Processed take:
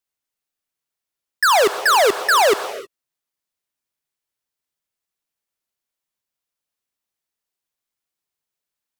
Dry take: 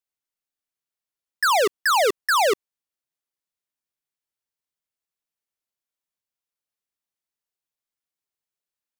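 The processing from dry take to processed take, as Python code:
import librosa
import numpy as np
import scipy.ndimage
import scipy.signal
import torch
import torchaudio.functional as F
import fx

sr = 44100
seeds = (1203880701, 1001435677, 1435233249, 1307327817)

y = fx.rev_gated(x, sr, seeds[0], gate_ms=340, shape='flat', drr_db=11.5)
y = y * 10.0 ** (4.5 / 20.0)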